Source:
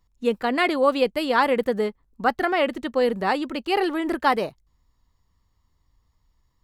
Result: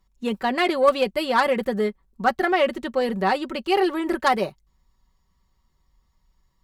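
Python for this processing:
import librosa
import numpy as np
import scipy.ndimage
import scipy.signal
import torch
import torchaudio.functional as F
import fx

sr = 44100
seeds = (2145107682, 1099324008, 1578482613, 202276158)

y = fx.cheby_harmonics(x, sr, harmonics=(3, 5), levels_db=(-13, -21), full_scale_db=-6.5)
y = y + 0.57 * np.pad(y, (int(5.3 * sr / 1000.0), 0))[:len(y)]
y = y * 10.0 ** (2.5 / 20.0)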